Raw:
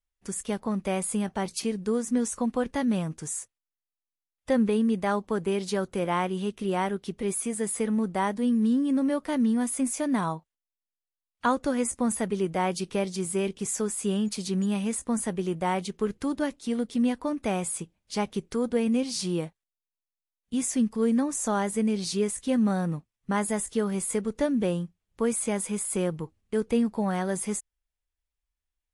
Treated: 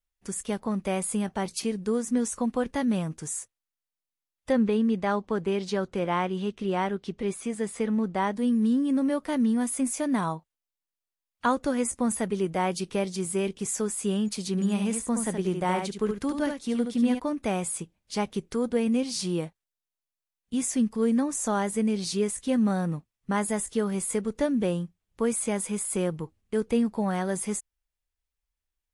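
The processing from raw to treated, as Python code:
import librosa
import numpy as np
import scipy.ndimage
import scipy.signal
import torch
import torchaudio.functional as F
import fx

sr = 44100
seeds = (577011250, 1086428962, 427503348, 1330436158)

y = fx.lowpass(x, sr, hz=6000.0, slope=12, at=(4.52, 8.34))
y = fx.echo_single(y, sr, ms=72, db=-6.0, at=(14.57, 17.18), fade=0.02)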